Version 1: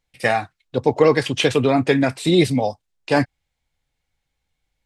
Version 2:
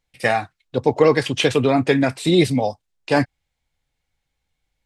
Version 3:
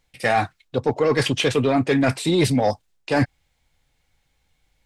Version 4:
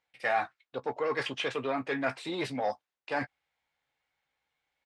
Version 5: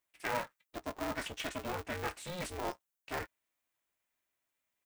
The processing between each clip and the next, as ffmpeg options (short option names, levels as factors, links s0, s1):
-af anull
-af "areverse,acompressor=threshold=0.0708:ratio=6,areverse,asoftclip=type=tanh:threshold=0.119,volume=2.66"
-filter_complex "[0:a]bandpass=f=1300:t=q:w=0.69:csg=0,asplit=2[s0][s1];[s1]adelay=15,volume=0.282[s2];[s0][s2]amix=inputs=2:normalize=0,volume=0.447"
-af "aexciter=amount=3.9:drive=6.6:freq=6300,aeval=exprs='val(0)*sgn(sin(2*PI*180*n/s))':c=same,volume=0.447"